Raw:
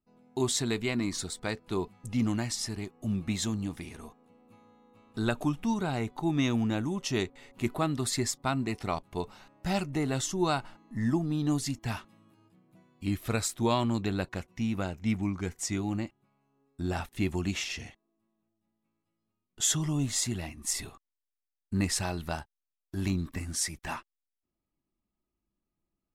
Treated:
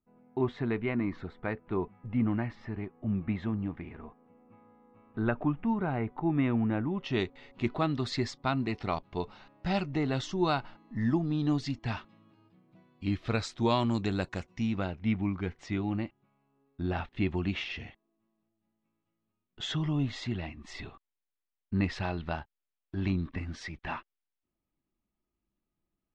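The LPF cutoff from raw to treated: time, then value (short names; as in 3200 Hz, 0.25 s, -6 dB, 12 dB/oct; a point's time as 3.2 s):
LPF 24 dB/oct
6.84 s 2200 Hz
7.24 s 4600 Hz
13.31 s 4600 Hz
14.3 s 8100 Hz
15.01 s 3600 Hz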